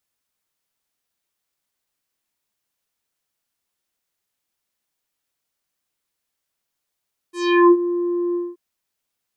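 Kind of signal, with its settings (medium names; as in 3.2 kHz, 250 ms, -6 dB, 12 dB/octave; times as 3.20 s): synth note square F4 24 dB/octave, low-pass 710 Hz, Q 1.9, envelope 4 oct, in 0.39 s, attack 382 ms, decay 0.05 s, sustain -12 dB, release 0.21 s, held 1.02 s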